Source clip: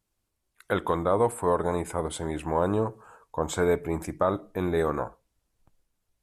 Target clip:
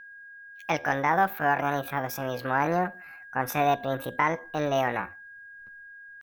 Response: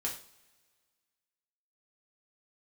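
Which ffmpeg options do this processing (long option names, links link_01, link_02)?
-af "aeval=exprs='val(0)+0.00631*sin(2*PI*1000*n/s)':channel_layout=same,asetrate=72056,aresample=44100,atempo=0.612027"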